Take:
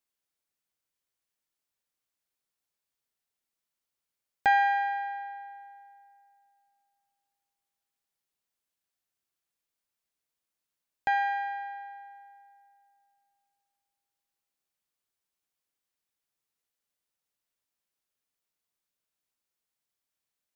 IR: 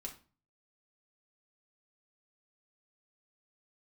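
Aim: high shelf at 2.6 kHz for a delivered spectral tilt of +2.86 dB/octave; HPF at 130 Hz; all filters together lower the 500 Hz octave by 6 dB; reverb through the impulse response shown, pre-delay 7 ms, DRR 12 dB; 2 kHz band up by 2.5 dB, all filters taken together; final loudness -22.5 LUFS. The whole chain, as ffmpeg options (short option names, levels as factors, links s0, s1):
-filter_complex "[0:a]highpass=130,equalizer=f=500:t=o:g=-9,equalizer=f=2000:t=o:g=6.5,highshelf=f=2600:g=-6.5,asplit=2[s0][s1];[1:a]atrim=start_sample=2205,adelay=7[s2];[s1][s2]afir=irnorm=-1:irlink=0,volume=0.355[s3];[s0][s3]amix=inputs=2:normalize=0,volume=2.37"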